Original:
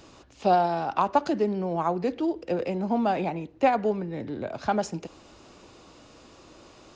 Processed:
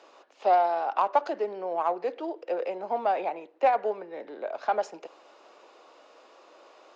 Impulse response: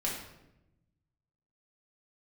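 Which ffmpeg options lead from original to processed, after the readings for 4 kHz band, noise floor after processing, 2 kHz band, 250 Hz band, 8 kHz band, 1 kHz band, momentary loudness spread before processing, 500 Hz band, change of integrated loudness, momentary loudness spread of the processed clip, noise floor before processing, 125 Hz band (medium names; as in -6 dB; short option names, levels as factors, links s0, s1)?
-5.5 dB, -57 dBFS, -2.0 dB, -14.0 dB, no reading, 0.0 dB, 11 LU, -1.0 dB, -1.5 dB, 13 LU, -53 dBFS, under -25 dB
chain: -filter_complex "[0:a]highpass=f=510:w=0.5412,highpass=f=510:w=1.3066,aemphasis=mode=reproduction:type=riaa,asplit=2[s0][s1];[s1]asoftclip=type=tanh:threshold=0.0944,volume=0.501[s2];[s0][s2]amix=inputs=2:normalize=0,volume=0.708"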